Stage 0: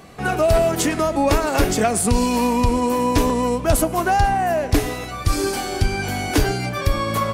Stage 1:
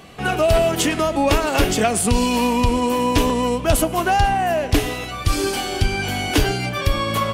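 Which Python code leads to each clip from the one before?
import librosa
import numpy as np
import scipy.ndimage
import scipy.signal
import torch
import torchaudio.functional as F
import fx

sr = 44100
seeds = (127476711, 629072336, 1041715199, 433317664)

y = fx.peak_eq(x, sr, hz=3000.0, db=8.0, octaves=0.57)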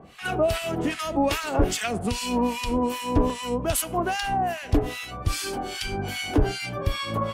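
y = fx.harmonic_tremolo(x, sr, hz=2.5, depth_pct=100, crossover_hz=1200.0)
y = y * 10.0 ** (-2.0 / 20.0)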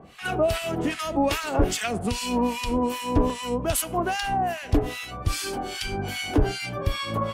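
y = x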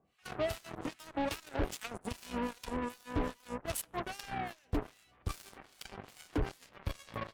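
y = fx.cheby_harmonics(x, sr, harmonics=(7,), levels_db=(-16,), full_scale_db=-9.5)
y = 10.0 ** (-19.5 / 20.0) * np.tanh(y / 10.0 ** (-19.5 / 20.0))
y = y * 10.0 ** (-6.5 / 20.0)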